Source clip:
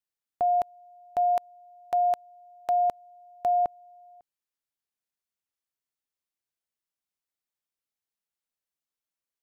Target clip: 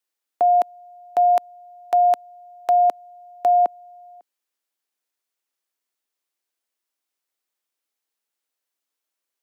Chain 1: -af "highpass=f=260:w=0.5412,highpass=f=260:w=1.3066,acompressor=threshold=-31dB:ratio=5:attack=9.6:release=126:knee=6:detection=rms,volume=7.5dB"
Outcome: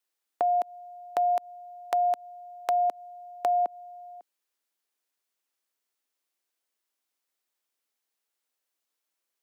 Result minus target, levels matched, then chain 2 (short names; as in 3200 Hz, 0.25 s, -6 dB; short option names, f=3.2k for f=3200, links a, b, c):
compressor: peak gain reduction +8.5 dB
-af "highpass=f=260:w=0.5412,highpass=f=260:w=1.3066,volume=7.5dB"